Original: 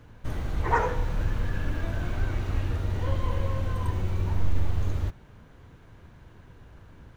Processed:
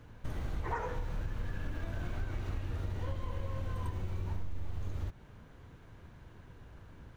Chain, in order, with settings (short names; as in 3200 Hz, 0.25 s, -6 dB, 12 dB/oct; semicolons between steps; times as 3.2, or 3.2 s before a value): compressor, threshold -29 dBFS, peak gain reduction 12.5 dB; gain -3 dB